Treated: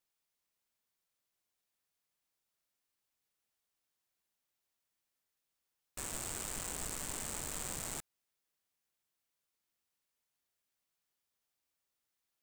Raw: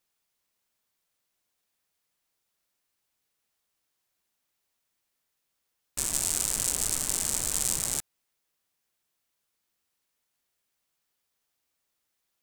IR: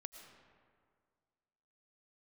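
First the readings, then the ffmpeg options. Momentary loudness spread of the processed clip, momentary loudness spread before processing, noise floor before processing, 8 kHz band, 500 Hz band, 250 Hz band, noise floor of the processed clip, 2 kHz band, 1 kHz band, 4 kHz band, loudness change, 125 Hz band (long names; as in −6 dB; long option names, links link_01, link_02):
5 LU, 5 LU, −80 dBFS, −14.0 dB, −5.5 dB, −6.0 dB, below −85 dBFS, −6.0 dB, −4.5 dB, −12.0 dB, −13.0 dB, −7.0 dB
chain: -af "aeval=exprs='(tanh(15.8*val(0)+0.55)-tanh(0.55))/15.8':channel_layout=same,volume=-4.5dB"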